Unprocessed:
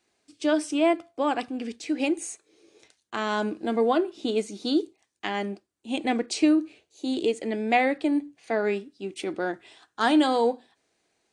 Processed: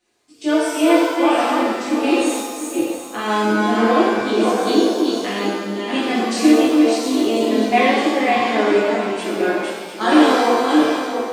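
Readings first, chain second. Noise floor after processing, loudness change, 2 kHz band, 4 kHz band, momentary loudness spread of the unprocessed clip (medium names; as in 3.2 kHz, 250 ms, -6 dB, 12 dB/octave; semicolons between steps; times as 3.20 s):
-33 dBFS, +9.0 dB, +10.0 dB, +10.0 dB, 14 LU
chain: backward echo that repeats 349 ms, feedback 45%, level -2.5 dB; pitch-shifted reverb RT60 1.1 s, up +7 st, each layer -8 dB, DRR -8.5 dB; trim -2.5 dB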